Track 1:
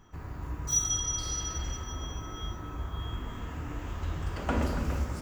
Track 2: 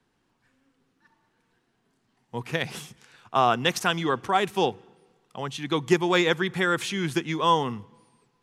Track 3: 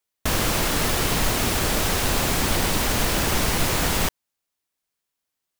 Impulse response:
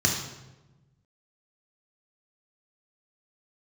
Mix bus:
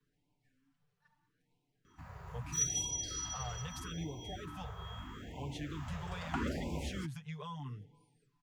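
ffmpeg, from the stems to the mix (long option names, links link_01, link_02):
-filter_complex "[0:a]highpass=frequency=140:poles=1,highshelf=frequency=11000:gain=-7.5,adelay=1850,volume=-4.5dB[link_01];[1:a]lowshelf=frequency=150:gain=10.5,aecho=1:1:6.8:0.97,volume=-14.5dB,acrossover=split=140[link_02][link_03];[link_03]acompressor=threshold=-42dB:ratio=6[link_04];[link_02][link_04]amix=inputs=2:normalize=0,alimiter=level_in=10.5dB:limit=-24dB:level=0:latency=1:release=112,volume=-10.5dB,volume=0dB[link_05];[link_01][link_05]amix=inputs=2:normalize=0,afftfilt=real='re*(1-between(b*sr/1024,260*pow(1500/260,0.5+0.5*sin(2*PI*0.78*pts/sr))/1.41,260*pow(1500/260,0.5+0.5*sin(2*PI*0.78*pts/sr))*1.41))':imag='im*(1-between(b*sr/1024,260*pow(1500/260,0.5+0.5*sin(2*PI*0.78*pts/sr))/1.41,260*pow(1500/260,0.5+0.5*sin(2*PI*0.78*pts/sr))*1.41))':win_size=1024:overlap=0.75"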